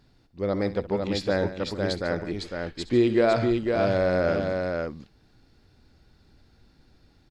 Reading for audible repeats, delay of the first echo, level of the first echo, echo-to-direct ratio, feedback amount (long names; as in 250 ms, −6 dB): 3, 66 ms, −16.0 dB, −3.5 dB, repeats not evenly spaced